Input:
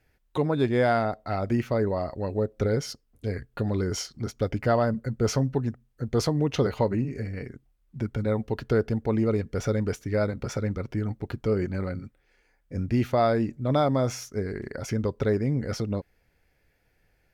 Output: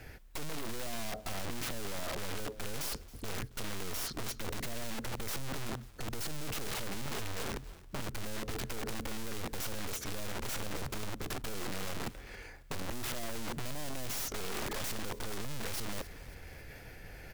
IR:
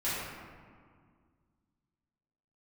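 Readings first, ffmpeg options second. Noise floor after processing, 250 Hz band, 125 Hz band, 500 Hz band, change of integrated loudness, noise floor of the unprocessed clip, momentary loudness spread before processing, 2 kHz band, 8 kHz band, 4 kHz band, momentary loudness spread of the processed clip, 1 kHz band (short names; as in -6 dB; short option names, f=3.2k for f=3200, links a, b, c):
-51 dBFS, -16.0 dB, -16.0 dB, -17.0 dB, -12.0 dB, -69 dBFS, 11 LU, -4.5 dB, +1.0 dB, -0.5 dB, 7 LU, -11.5 dB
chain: -filter_complex "[0:a]acrossover=split=490[a][b];[b]acompressor=threshold=-35dB:ratio=6[c];[a][c]amix=inputs=2:normalize=0,aeval=exprs='(tanh(141*val(0)+0.35)-tanh(0.35))/141':c=same,aeval=exprs='(mod(178*val(0)+1,2)-1)/178':c=same,asplit=4[d][e][f][g];[e]adelay=273,afreqshift=-41,volume=-21.5dB[h];[f]adelay=546,afreqshift=-82,volume=-28.4dB[i];[g]adelay=819,afreqshift=-123,volume=-35.4dB[j];[d][h][i][j]amix=inputs=4:normalize=0,areverse,acompressor=mode=upward:threshold=-53dB:ratio=2.5,areverse,volume=13.5dB"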